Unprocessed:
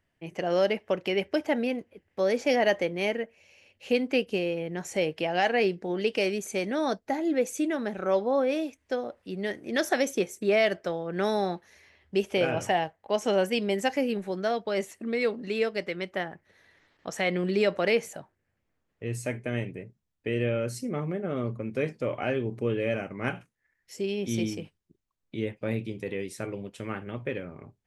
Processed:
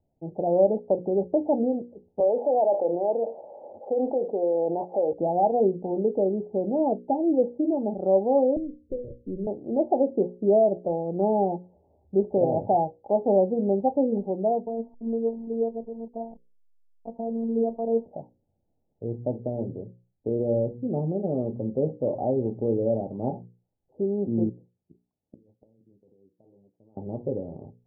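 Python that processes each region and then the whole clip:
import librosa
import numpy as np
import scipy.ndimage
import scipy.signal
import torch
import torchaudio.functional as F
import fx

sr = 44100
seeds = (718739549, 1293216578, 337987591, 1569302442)

y = fx.chain(x, sr, fx.highpass(hz=660.0, slope=12),
    fx.env_flatten(amount_pct=70), at=(2.2, 5.13))
y = fx.chain(y, sr, fx.lower_of_two(delay_ms=0.57),
    fx.steep_lowpass(hz=530.0, slope=72),
    fx.band_squash(depth_pct=70), at=(8.56, 9.47))
y = fx.chain(y, sr, fx.delta_hold(step_db=-42.5),
    fx.peak_eq(hz=570.0, db=-3.5, octaves=1.5),
    fx.robotise(hz=228.0), at=(14.66, 18.06))
y = fx.chain(y, sr, fx.highpass(hz=78.0, slope=12),
    fx.over_compress(threshold_db=-35.0, ratio=-1.0),
    fx.gate_flip(shuts_db=-34.0, range_db=-28), at=(24.49, 26.97))
y = scipy.signal.sosfilt(scipy.signal.cheby1(6, 1.0, 850.0, 'lowpass', fs=sr, output='sos'), y)
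y = fx.hum_notches(y, sr, base_hz=60, count=9)
y = y * librosa.db_to_amplitude(5.0)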